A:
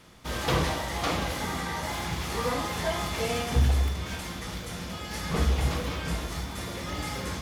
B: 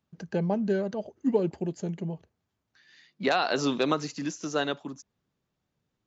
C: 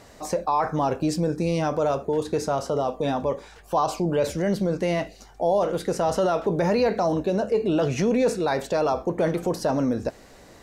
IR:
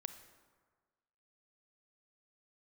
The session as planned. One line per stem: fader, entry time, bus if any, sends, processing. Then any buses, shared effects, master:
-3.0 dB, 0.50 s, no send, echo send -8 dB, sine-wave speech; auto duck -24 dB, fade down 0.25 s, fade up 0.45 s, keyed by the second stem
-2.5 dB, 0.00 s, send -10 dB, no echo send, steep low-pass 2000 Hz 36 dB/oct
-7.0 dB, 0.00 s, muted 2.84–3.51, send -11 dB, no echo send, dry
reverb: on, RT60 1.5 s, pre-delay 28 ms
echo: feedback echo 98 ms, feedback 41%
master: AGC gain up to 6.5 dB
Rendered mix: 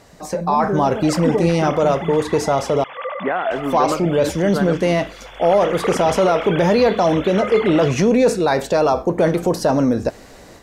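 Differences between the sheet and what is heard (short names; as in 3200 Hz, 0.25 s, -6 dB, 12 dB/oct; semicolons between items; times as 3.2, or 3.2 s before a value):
stem C -7.0 dB -> 0.0 dB; reverb return -7.5 dB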